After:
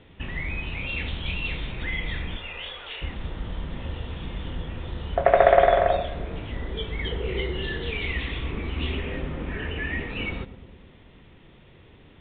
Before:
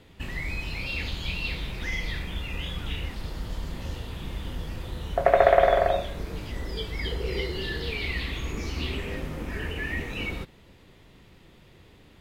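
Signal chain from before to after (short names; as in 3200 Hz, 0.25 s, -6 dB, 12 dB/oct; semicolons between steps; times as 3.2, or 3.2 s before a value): 2.36–3.02 steep high-pass 420 Hz 36 dB/oct; darkening echo 0.108 s, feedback 69%, low-pass 880 Hz, level -12 dB; gain +1.5 dB; A-law 64 kbps 8000 Hz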